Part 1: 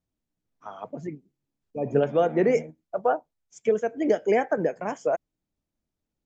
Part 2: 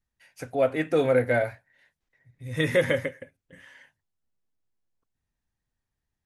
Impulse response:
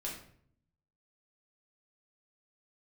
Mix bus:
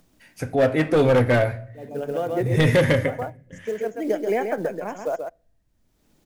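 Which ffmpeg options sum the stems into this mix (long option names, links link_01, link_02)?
-filter_complex "[0:a]highpass=frequency=130:width=0.5412,highpass=frequency=130:width=1.3066,acompressor=mode=upward:threshold=-42dB:ratio=2.5,acrusher=bits=7:mode=log:mix=0:aa=0.000001,volume=-2dB,asplit=3[link_01][link_02][link_03];[link_02]volume=-21.5dB[link_04];[link_03]volume=-6dB[link_05];[1:a]lowshelf=frequency=190:gain=12,asoftclip=type=hard:threshold=-17.5dB,volume=3dB,asplit=3[link_06][link_07][link_08];[link_07]volume=-9.5dB[link_09];[link_08]apad=whole_len=276050[link_10];[link_01][link_10]sidechaincompress=threshold=-38dB:ratio=3:attack=16:release=748[link_11];[2:a]atrim=start_sample=2205[link_12];[link_04][link_09]amix=inputs=2:normalize=0[link_13];[link_13][link_12]afir=irnorm=-1:irlink=0[link_14];[link_05]aecho=0:1:133:1[link_15];[link_11][link_06][link_14][link_15]amix=inputs=4:normalize=0"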